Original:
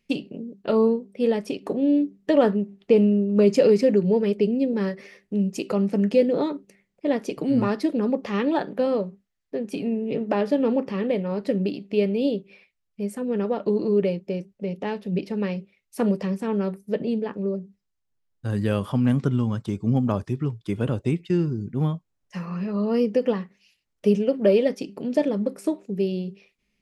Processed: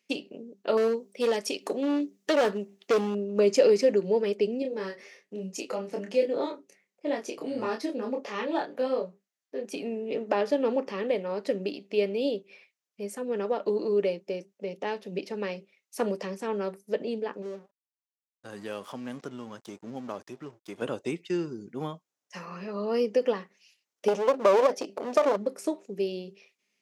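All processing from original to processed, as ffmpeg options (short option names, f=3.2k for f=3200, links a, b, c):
-filter_complex "[0:a]asettb=1/sr,asplit=3[a][b][c];[a]atrim=end=0.774[d];[b]atrim=start=0.77:end=3.15,asetpts=PTS-STARTPTS,afade=t=in:d=0.004:c=qsin,afade=t=out:st=2.376:d=0.004:c=qsin,highshelf=f=3k:g=10,asoftclip=type=hard:threshold=-16dB[e];[c]atrim=start=3.146[f];[d][e]acrossfade=d=0.004:c1=hsin:c2=qsin[g];[g][f]acrossfade=d=0.004:c1=qsin:c2=hsin,asettb=1/sr,asplit=3[h][i][j];[h]atrim=end=4.624[k];[i]atrim=start=4.62:end=9.65,asetpts=PTS-STARTPTS,afade=t=in:d=0.004:c=qsin,afade=t=out:st=5.026:d=0.004:c=qsin,flanger=delay=5.1:depth=3.6:regen=-47:speed=1.3:shape=triangular,asplit=2[l][m];[m]adelay=27,volume=-4dB[n];[l][n]amix=inputs=2:normalize=0,atrim=end_sample=221823[o];[j]atrim=start=9.646[p];[k][o]acrossfade=d=0.004:c1=hsin:c2=qsin[q];[q][p]acrossfade=d=0.004:c1=qsin:c2=hsin,asettb=1/sr,asplit=3[r][s][t];[r]atrim=end=17.424[u];[s]atrim=start=17.42:end=20.82,asetpts=PTS-STARTPTS,afade=t=in:d=0.004:c=qsin,afade=t=out:st=3.396:d=0.004:c=qsin,acompressor=threshold=-36dB:ratio=1.5:attack=3.2:release=140:knee=1:detection=peak,aeval=exprs='sgn(val(0))*max(abs(val(0))-0.00376,0)':c=same[v];[t]atrim=start=20.816[w];[u][v]acrossfade=d=0.004:c1=hsin:c2=qsin[x];[x][w]acrossfade=d=0.004:c1=qsin:c2=hsin,asettb=1/sr,asplit=3[y][z][aa];[y]atrim=end=24.084[ab];[z]atrim=start=24.08:end=25.37,asetpts=PTS-STARTPTS,afade=t=in:d=0.004:c=qsin,afade=t=out:st=1.286:d=0.004:c=qsin,equalizer=f=660:t=o:w=1.1:g=12.5,acompressor=threshold=-10dB:ratio=5:attack=3.2:release=140:knee=1:detection=peak,aeval=exprs='clip(val(0),-1,0.0473)':c=same[ac];[aa]atrim=start=25.366[ad];[ab][ac]acrossfade=d=0.004:c1=hsin:c2=qsin[ae];[ae][ad]acrossfade=d=0.004:c1=qsin:c2=hsin,highpass=380,equalizer=f=6.2k:t=o:w=0.57:g=6,volume=-1dB"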